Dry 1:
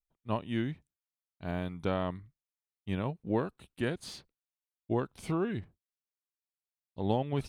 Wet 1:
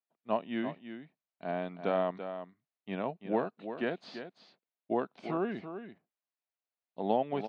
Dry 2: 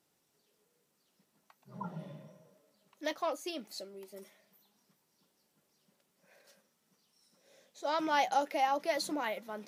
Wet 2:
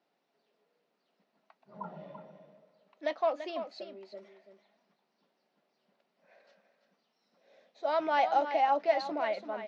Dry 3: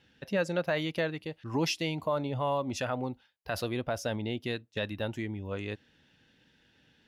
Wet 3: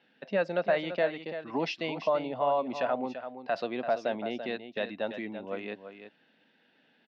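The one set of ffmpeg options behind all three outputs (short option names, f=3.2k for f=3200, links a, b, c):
-af "highpass=f=200:w=0.5412,highpass=f=200:w=1.3066,equalizer=f=320:t=q:w=4:g=-3,equalizer=f=680:t=q:w=4:g=8,equalizer=f=3.3k:t=q:w=4:g=-4,lowpass=f=4.1k:w=0.5412,lowpass=f=4.1k:w=1.3066,aecho=1:1:337:0.316"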